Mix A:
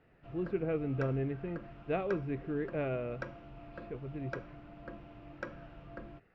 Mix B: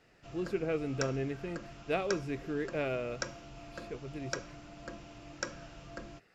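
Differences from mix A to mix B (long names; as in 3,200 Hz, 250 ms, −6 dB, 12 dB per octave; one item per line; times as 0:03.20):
speech: add low-shelf EQ 94 Hz −11 dB
master: remove high-frequency loss of the air 490 metres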